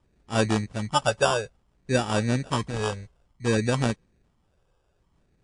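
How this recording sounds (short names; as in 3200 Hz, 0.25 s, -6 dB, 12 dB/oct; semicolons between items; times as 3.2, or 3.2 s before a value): phasing stages 8, 0.58 Hz, lowest notch 240–1600 Hz; aliases and images of a low sample rate 2100 Hz, jitter 0%; MP3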